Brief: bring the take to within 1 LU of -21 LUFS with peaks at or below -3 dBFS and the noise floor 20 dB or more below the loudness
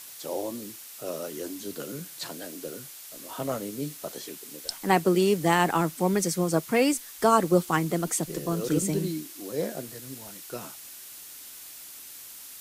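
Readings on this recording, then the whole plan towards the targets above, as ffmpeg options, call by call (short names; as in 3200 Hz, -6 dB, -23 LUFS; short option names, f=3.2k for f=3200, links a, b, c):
noise floor -45 dBFS; noise floor target -48 dBFS; loudness -27.5 LUFS; peak -7.0 dBFS; loudness target -21.0 LUFS
-> -af "afftdn=nr=6:nf=-45"
-af "volume=6.5dB,alimiter=limit=-3dB:level=0:latency=1"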